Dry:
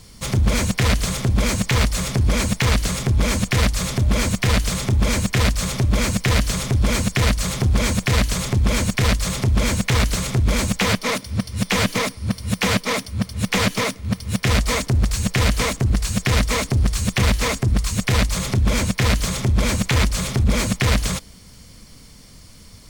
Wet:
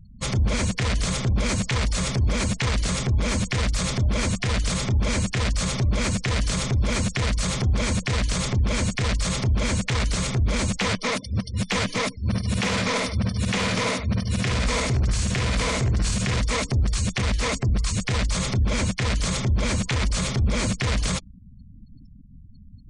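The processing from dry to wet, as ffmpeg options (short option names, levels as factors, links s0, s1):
-filter_complex "[0:a]asettb=1/sr,asplit=3[s0][s1][s2];[s0]atrim=end=12.204[s3];[s1]atrim=start=12.2:end=16.4,asetpts=PTS-STARTPTS,afade=t=in:d=0.004:c=qsin,afade=t=out:st=4.196:d=0.004:c=qsin,aecho=1:1:51|53|69|96|153:0.211|0.531|0.631|0.2|0.2,atrim=end_sample=185220[s4];[s2]atrim=start=16.396[s5];[s3][s4]acrossfade=d=0.004:c1=hsin:c2=qsin[s6];[s6][s5]acrossfade=d=0.004:c1=qsin:c2=hsin,lowpass=9500,afftfilt=real='re*gte(hypot(re,im),0.0158)':imag='im*gte(hypot(re,im),0.0158)':win_size=1024:overlap=0.75,alimiter=limit=0.168:level=0:latency=1:release=20"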